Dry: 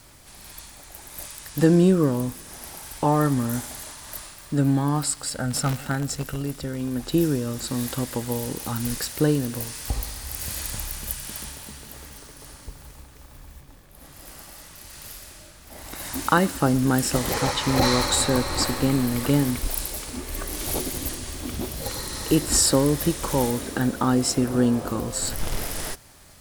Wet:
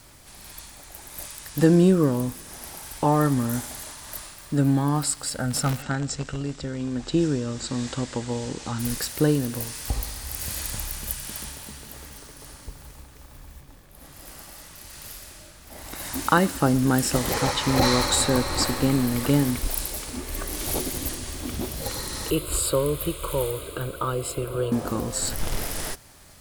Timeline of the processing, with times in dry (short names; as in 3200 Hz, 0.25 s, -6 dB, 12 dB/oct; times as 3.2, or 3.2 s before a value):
5.82–8.79 elliptic low-pass 7900 Hz, stop band 60 dB
22.3–24.72 fixed phaser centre 1200 Hz, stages 8